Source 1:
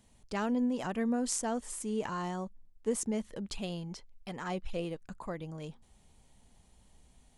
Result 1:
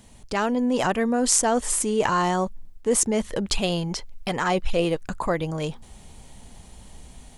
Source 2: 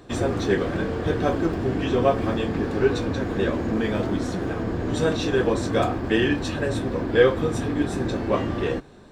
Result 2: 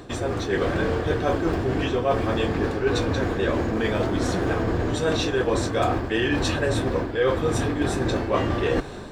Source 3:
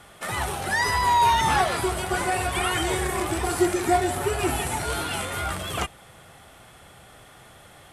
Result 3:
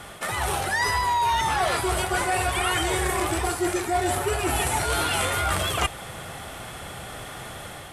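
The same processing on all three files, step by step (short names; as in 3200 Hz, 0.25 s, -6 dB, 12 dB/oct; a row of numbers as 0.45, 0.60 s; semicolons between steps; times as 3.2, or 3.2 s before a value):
reverse; compressor 10:1, threshold -32 dBFS; reverse; dynamic EQ 210 Hz, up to -6 dB, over -50 dBFS, Q 1.2; AGC gain up to 3.5 dB; match loudness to -24 LUFS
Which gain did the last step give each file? +13.5, +10.5, +8.5 dB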